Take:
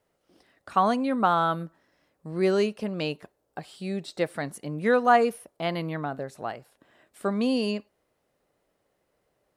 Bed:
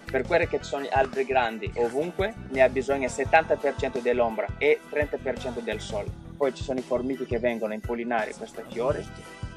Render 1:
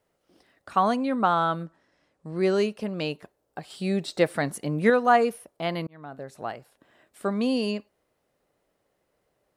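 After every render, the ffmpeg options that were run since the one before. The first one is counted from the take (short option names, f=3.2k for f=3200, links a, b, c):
-filter_complex "[0:a]asettb=1/sr,asplit=3[a][b][c];[a]atrim=end=0.974[d];[b]atrim=start=0.97:end=2.54,asetpts=PTS-STARTPTS,afade=t=in:d=0.004:c=qsin,afade=t=out:st=1.566:d=0.004:c=qsin,lowpass=f=9.5k:w=0.5412,lowpass=f=9.5k:w=1.3066[e];[c]atrim=start=2.536[f];[d][e]acrossfade=d=0.004:c1=hsin:c2=qsin[g];[g][f]acrossfade=d=0.004:c1=qsin:c2=hsin,asettb=1/sr,asplit=3[h][i][j];[h]atrim=end=3.704[k];[i]atrim=start=3.7:end=4.9,asetpts=PTS-STARTPTS,afade=t=in:d=0.004:c=qsin,afade=t=out:st=1.196:d=0.004:c=qsin,acontrast=31[l];[j]atrim=start=4.896[m];[k][l]acrossfade=d=0.004:c1=hsin:c2=qsin[n];[n][m]acrossfade=d=0.004:c1=qsin:c2=hsin,asplit=2[o][p];[o]atrim=end=5.87,asetpts=PTS-STARTPTS,afade=t=out:st=5.866:d=0.004:c=hsin[q];[p]atrim=start=5.87,asetpts=PTS-STARTPTS,afade=t=in:d=0.57[r];[q][r]concat=n=2:v=0:a=1"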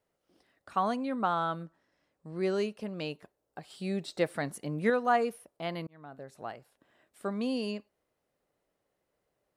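-af "volume=-7dB"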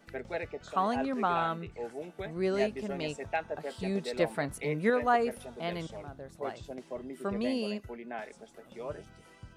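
-filter_complex "[1:a]volume=-13.5dB[a];[0:a][a]amix=inputs=2:normalize=0"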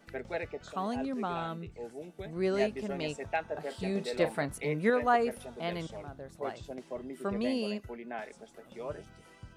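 -filter_complex "[0:a]asettb=1/sr,asplit=3[a][b][c];[a]atrim=end=0.724[d];[b]atrim=start=0.72:end=2.33,asetpts=PTS-STARTPTS,afade=t=in:d=0.004:c=qsin,afade=t=out:st=1.606:d=0.004:c=qsin,equalizer=f=1.3k:w=0.48:g=-8[e];[c]atrim=start=2.326[f];[d][e]acrossfade=d=0.004:c1=hsin:c2=qsin[g];[g][f]acrossfade=d=0.004:c1=qsin:c2=hsin,asettb=1/sr,asplit=3[h][i][j];[h]atrim=end=3.454[k];[i]atrim=start=3.45:end=4.43,asetpts=PTS-STARTPTS,afade=t=in:d=0.004:c=qsin,afade=t=out:st=0.976:d=0.004:c=qsin,asplit=2[l][m];[m]adelay=39,volume=-12dB[n];[l][n]amix=inputs=2:normalize=0,atrim=end_sample=43218[o];[j]atrim=start=4.426[p];[k][o]acrossfade=d=0.004:c1=hsin:c2=qsin[q];[q][p]acrossfade=d=0.004:c1=qsin:c2=hsin"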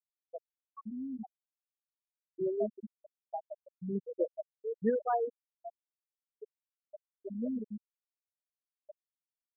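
-af "afftfilt=real='re*gte(hypot(re,im),0.2)':imag='im*gte(hypot(re,im),0.2)':win_size=1024:overlap=0.75,equalizer=f=1.7k:w=0.5:g=-7.5"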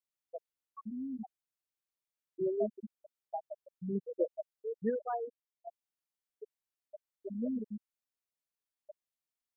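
-filter_complex "[0:a]asplit=2[a][b];[a]atrim=end=5.67,asetpts=PTS-STARTPTS,afade=t=out:st=4.52:d=1.15:c=qua:silence=0.398107[c];[b]atrim=start=5.67,asetpts=PTS-STARTPTS,afade=t=in:d=0.004:c=hsin:silence=0.398107[d];[c][d]concat=n=2:v=0:a=1"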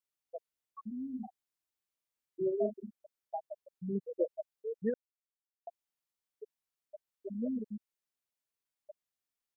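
-filter_complex "[0:a]asplit=3[a][b][c];[a]afade=t=out:st=1.06:d=0.02[d];[b]asplit=2[e][f];[f]adelay=39,volume=-7dB[g];[e][g]amix=inputs=2:normalize=0,afade=t=in:st=1.06:d=0.02,afade=t=out:st=2.94:d=0.02[h];[c]afade=t=in:st=2.94:d=0.02[i];[d][h][i]amix=inputs=3:normalize=0,asplit=3[j][k][l];[j]atrim=end=4.94,asetpts=PTS-STARTPTS,afade=t=out:st=4.936:d=0.004:c=hsin[m];[k]atrim=start=4.94:end=5.67,asetpts=PTS-STARTPTS,volume=0[n];[l]atrim=start=5.67,asetpts=PTS-STARTPTS,afade=t=in:d=0.004:c=hsin[o];[m][n][o]concat=n=3:v=0:a=1"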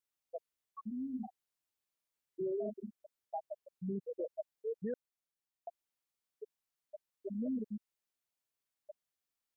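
-af "alimiter=level_in=7dB:limit=-24dB:level=0:latency=1:release=14,volume=-7dB"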